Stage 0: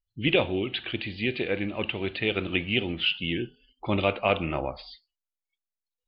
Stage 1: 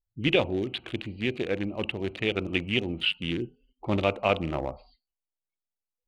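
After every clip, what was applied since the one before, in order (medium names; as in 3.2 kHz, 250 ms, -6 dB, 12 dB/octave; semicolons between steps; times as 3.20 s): local Wiener filter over 25 samples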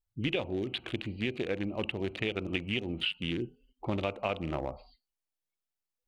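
compression 4:1, threshold -29 dBFS, peak gain reduction 10 dB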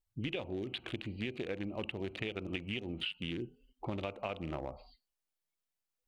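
compression 2:1, threshold -39 dBFS, peak gain reduction 7.5 dB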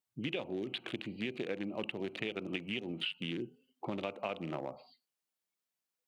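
high-pass 140 Hz 24 dB/octave; trim +1 dB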